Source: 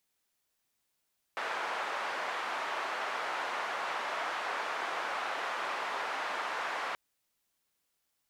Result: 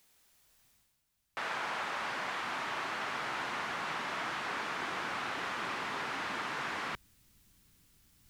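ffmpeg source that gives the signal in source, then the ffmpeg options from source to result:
-f lavfi -i "anoisesrc=color=white:duration=5.58:sample_rate=44100:seed=1,highpass=frequency=800,lowpass=frequency=1200,volume=-14.7dB"
-af "areverse,acompressor=mode=upward:threshold=-55dB:ratio=2.5,areverse,asubboost=boost=11.5:cutoff=180"

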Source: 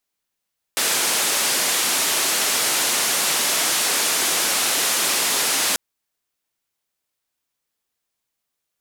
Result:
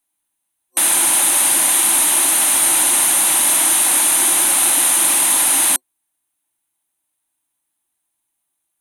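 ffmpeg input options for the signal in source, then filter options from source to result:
-f lavfi -i "anoisesrc=color=white:duration=4.99:sample_rate=44100:seed=1,highpass=frequency=250,lowpass=frequency=11000,volume=-12.6dB"
-af "superequalizer=6b=2:7b=0.282:9b=1.78:14b=0.447:16b=3.98"

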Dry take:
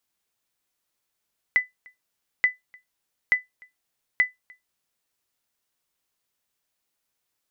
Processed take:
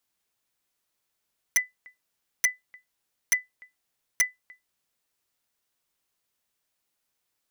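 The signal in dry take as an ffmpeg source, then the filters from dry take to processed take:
-f lavfi -i "aevalsrc='0.299*(sin(2*PI*2000*mod(t,0.88))*exp(-6.91*mod(t,0.88)/0.16)+0.0355*sin(2*PI*2000*max(mod(t,0.88)-0.3,0))*exp(-6.91*max(mod(t,0.88)-0.3,0)/0.16))':duration=3.52:sample_rate=44100"
-filter_complex "[0:a]acrossover=split=2900[link_01][link_02];[link_02]acompressor=threshold=-38dB:ratio=4:attack=1:release=60[link_03];[link_01][link_03]amix=inputs=2:normalize=0,aeval=exprs='(mod(5.96*val(0)+1,2)-1)/5.96':channel_layout=same"

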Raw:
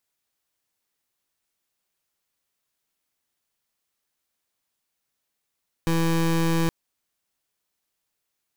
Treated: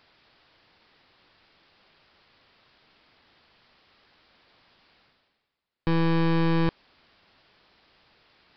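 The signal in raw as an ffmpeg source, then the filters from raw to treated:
-f lavfi -i "aevalsrc='0.0841*(2*lt(mod(165*t,1),0.24)-1)':duration=0.82:sample_rate=44100"
-af "highshelf=frequency=4300:gain=-7,areverse,acompressor=mode=upward:threshold=-38dB:ratio=2.5,areverse,aresample=11025,aresample=44100"

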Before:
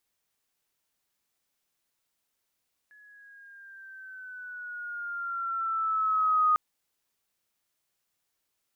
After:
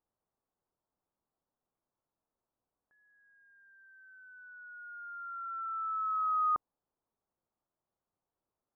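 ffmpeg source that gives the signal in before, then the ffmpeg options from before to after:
-f lavfi -i "aevalsrc='pow(10,(-19+33.5*(t/3.65-1))/20)*sin(2*PI*1700*3.65/(-5.5*log(2)/12)*(exp(-5.5*log(2)/12*t/3.65)-1))':duration=3.65:sample_rate=44100"
-af "lowpass=frequency=1100:width=0.5412,lowpass=frequency=1100:width=1.3066"

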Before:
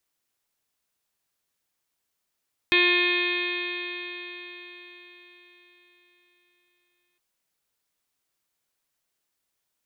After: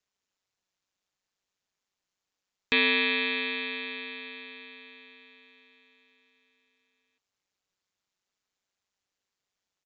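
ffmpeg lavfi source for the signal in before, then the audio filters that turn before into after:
-f lavfi -i "aevalsrc='0.0668*pow(10,-3*t/4.61)*sin(2*PI*353.09*t)+0.01*pow(10,-3*t/4.61)*sin(2*PI*706.73*t)+0.0251*pow(10,-3*t/4.61)*sin(2*PI*1061.48*t)+0.01*pow(10,-3*t/4.61)*sin(2*PI*1417.86*t)+0.0596*pow(10,-3*t/4.61)*sin(2*PI*1776.44*t)+0.0473*pow(10,-3*t/4.61)*sin(2*PI*2137.73*t)+0.106*pow(10,-3*t/4.61)*sin(2*PI*2502.28*t)+0.0119*pow(10,-3*t/4.61)*sin(2*PI*2870.61*t)+0.0473*pow(10,-3*t/4.61)*sin(2*PI*3243.22*t)+0.0473*pow(10,-3*t/4.61)*sin(2*PI*3620.62*t)+0.0211*pow(10,-3*t/4.61)*sin(2*PI*4003.3*t)+0.01*pow(10,-3*t/4.61)*sin(2*PI*4391.73*t)':duration=4.46:sample_rate=44100"
-af "aeval=exprs='val(0)*sin(2*PI*96*n/s)':channel_layout=same,aresample=16000,aresample=44100"

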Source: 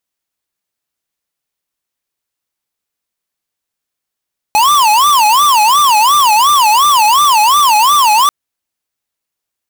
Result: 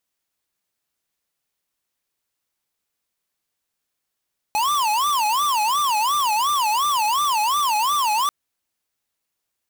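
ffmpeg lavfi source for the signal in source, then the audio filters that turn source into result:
-f lavfi -i "aevalsrc='0.376*(2*lt(mod((1014*t-176/(2*PI*2.8)*sin(2*PI*2.8*t)),1),0.5)-1)':duration=3.74:sample_rate=44100"
-af "asoftclip=type=tanh:threshold=-20dB"

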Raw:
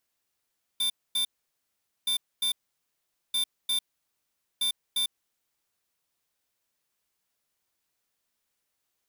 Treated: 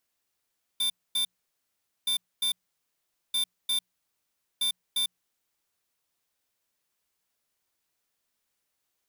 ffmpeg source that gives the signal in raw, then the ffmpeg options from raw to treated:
-f lavfi -i "aevalsrc='0.0473*(2*lt(mod(3570*t,1),0.5)-1)*clip(min(mod(mod(t,1.27),0.35),0.1-mod(mod(t,1.27),0.35))/0.005,0,1)*lt(mod(t,1.27),0.7)':duration=5.08:sample_rate=44100"
-af "bandreject=frequency=60:width_type=h:width=6,bandreject=frequency=120:width_type=h:width=6,bandreject=frequency=180:width_type=h:width=6"

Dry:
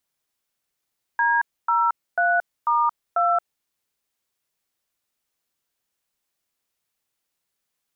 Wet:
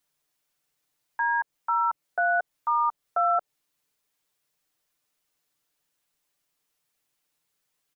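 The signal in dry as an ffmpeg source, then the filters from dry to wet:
-f lavfi -i "aevalsrc='0.106*clip(min(mod(t,0.493),0.225-mod(t,0.493))/0.002,0,1)*(eq(floor(t/0.493),0)*(sin(2*PI*941*mod(t,0.493))+sin(2*PI*1633*mod(t,0.493)))+eq(floor(t/0.493),1)*(sin(2*PI*941*mod(t,0.493))+sin(2*PI*1336*mod(t,0.493)))+eq(floor(t/0.493),2)*(sin(2*PI*697*mod(t,0.493))+sin(2*PI*1477*mod(t,0.493)))+eq(floor(t/0.493),3)*(sin(2*PI*941*mod(t,0.493))+sin(2*PI*1209*mod(t,0.493)))+eq(floor(t/0.493),4)*(sin(2*PI*697*mod(t,0.493))+sin(2*PI*1336*mod(t,0.493))))':duration=2.465:sample_rate=44100"
-filter_complex "[0:a]acrossover=split=840[link_01][link_02];[link_02]alimiter=level_in=3dB:limit=-24dB:level=0:latency=1:release=149,volume=-3dB[link_03];[link_01][link_03]amix=inputs=2:normalize=0,aecho=1:1:6.7:0.74"

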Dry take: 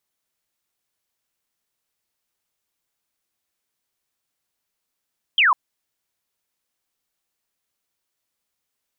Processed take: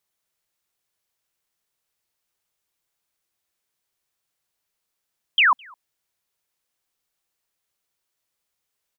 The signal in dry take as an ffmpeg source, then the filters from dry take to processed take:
-f lavfi -i "aevalsrc='0.237*clip(t/0.002,0,1)*clip((0.15-t)/0.002,0,1)*sin(2*PI*3300*0.15/log(930/3300)*(exp(log(930/3300)*t/0.15)-1))':duration=0.15:sample_rate=44100"
-filter_complex "[0:a]equalizer=frequency=250:width=5.2:gain=-8,asplit=2[link_01][link_02];[link_02]adelay=209.9,volume=-28dB,highshelf=frequency=4000:gain=-4.72[link_03];[link_01][link_03]amix=inputs=2:normalize=0"

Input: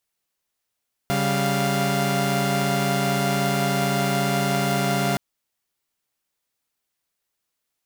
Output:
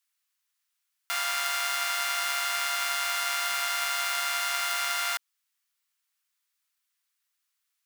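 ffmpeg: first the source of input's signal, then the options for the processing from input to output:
-f lavfi -i "aevalsrc='0.0794*((2*mod(138.59*t,1)-1)+(2*mod(196*t,1)-1)+(2*mod(698.46*t,1)-1))':duration=4.07:sample_rate=44100"
-af "highpass=frequency=1100:width=0.5412,highpass=frequency=1100:width=1.3066"

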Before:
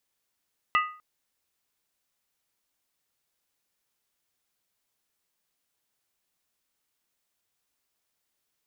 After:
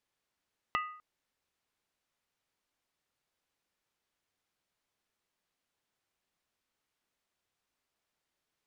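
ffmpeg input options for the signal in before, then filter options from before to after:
-f lavfi -i "aevalsrc='0.126*pow(10,-3*t/0.43)*sin(2*PI*1240*t)+0.075*pow(10,-3*t/0.341)*sin(2*PI*1976.6*t)+0.0447*pow(10,-3*t/0.294)*sin(2*PI*2648.6*t)+0.0266*pow(10,-3*t/0.284)*sin(2*PI*2847*t)':duration=0.25:sample_rate=44100"
-af "aemphasis=mode=reproduction:type=50kf,acompressor=threshold=-32dB:ratio=4"

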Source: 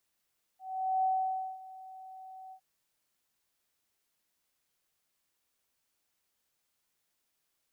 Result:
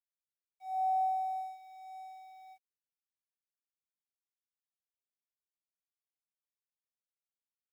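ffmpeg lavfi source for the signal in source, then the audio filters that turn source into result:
-f lavfi -i "aevalsrc='0.0562*sin(2*PI*756*t)':duration=2.01:sample_rate=44100,afade=type=in:duration=0.444,afade=type=out:start_time=0.444:duration=0.546:silence=0.1,afade=type=out:start_time=1.93:duration=0.08"
-af "aphaser=in_gain=1:out_gain=1:delay=2.3:decay=0.32:speed=0.36:type=triangular,aeval=exprs='sgn(val(0))*max(abs(val(0))-0.00112,0)':channel_layout=same"

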